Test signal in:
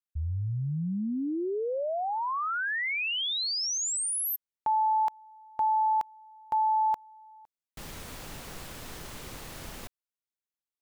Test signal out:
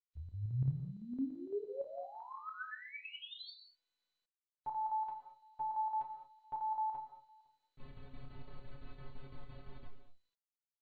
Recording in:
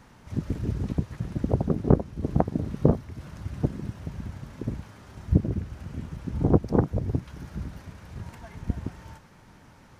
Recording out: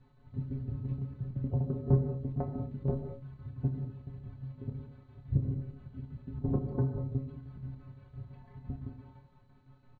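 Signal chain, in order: tilt -3 dB/oct; metallic resonator 130 Hz, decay 0.28 s, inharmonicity 0.008; chopper 5.9 Hz, depth 60%, duty 70%; doubler 29 ms -8 dB; non-linear reverb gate 0.24 s flat, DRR 6 dB; gain -5 dB; MP2 48 kbps 16000 Hz

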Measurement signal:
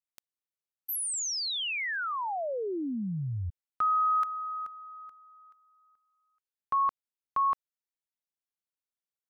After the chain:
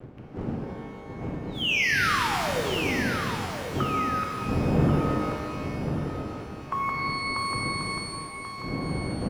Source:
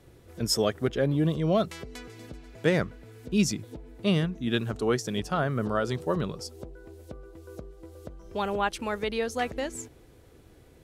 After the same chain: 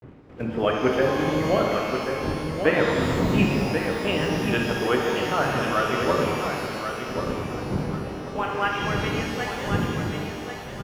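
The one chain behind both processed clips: ending faded out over 2.39 s; wind noise 170 Hz -32 dBFS; steep low-pass 3100 Hz 96 dB/oct; harmonic-percussive split harmonic -9 dB; gate with hold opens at -39 dBFS; HPF 120 Hz 6 dB/oct; low shelf 330 Hz -3.5 dB; on a send: feedback echo 1.086 s, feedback 31%, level -7 dB; on the sum: crossover distortion -57.5 dBFS; shimmer reverb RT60 2.2 s, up +12 st, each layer -8 dB, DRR -0.5 dB; gain +6.5 dB

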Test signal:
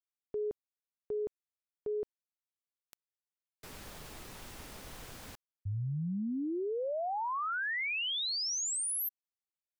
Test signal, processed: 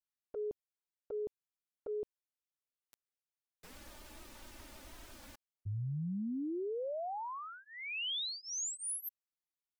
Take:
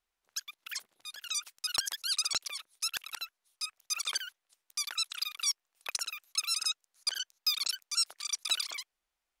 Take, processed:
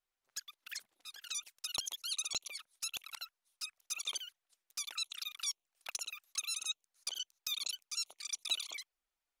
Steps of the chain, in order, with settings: envelope flanger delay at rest 7.8 ms, full sweep at -32.5 dBFS; gain -2.5 dB

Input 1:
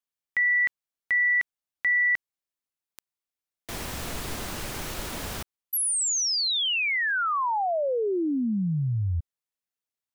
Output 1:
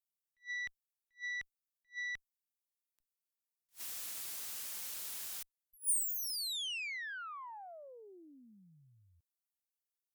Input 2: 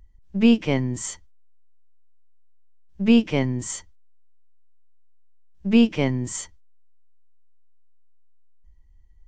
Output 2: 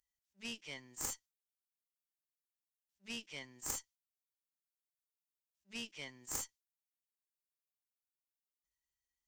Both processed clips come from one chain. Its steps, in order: differentiator; added harmonics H 2 -9 dB, 3 -7 dB, 4 -23 dB, 6 -35 dB, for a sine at -17.5 dBFS; attack slew limiter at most 360 dB/s; gain +5 dB

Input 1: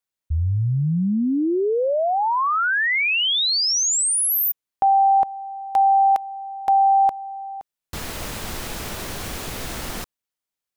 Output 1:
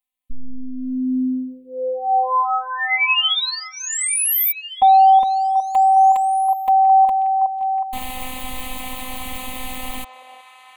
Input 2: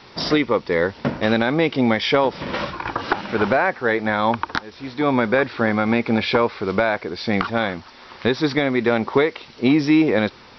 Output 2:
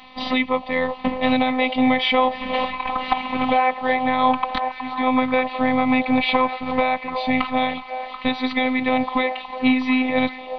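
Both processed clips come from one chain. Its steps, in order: fixed phaser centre 1500 Hz, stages 6; delay with a stepping band-pass 0.367 s, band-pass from 690 Hz, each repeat 0.7 oct, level -6 dB; robotiser 257 Hz; gain +6 dB

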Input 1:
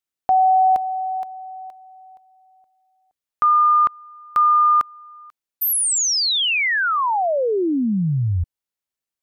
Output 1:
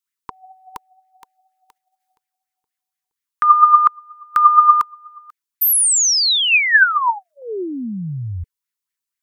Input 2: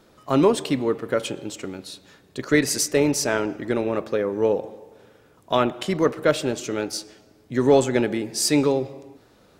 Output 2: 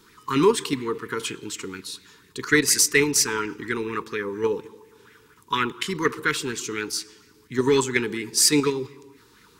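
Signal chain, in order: elliptic band-stop 450–940 Hz, stop band 50 dB; high shelf 3000 Hz +9.5 dB; in parallel at -1 dB: level quantiser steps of 19 dB; on the sum: LFO bell 4.2 Hz 600–2100 Hz +13 dB; gain -6.5 dB

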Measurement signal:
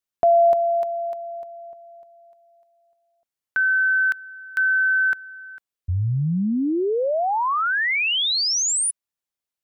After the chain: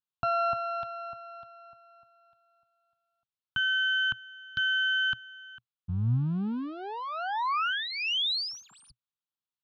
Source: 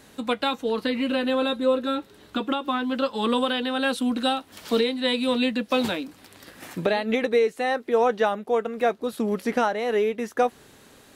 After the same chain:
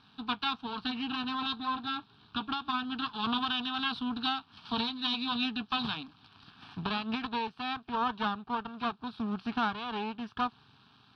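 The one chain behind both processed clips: half-wave rectifier; speaker cabinet 100–5000 Hz, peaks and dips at 120 Hz +6 dB, 340 Hz -10 dB, 550 Hz -7 dB; fixed phaser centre 2000 Hz, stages 6

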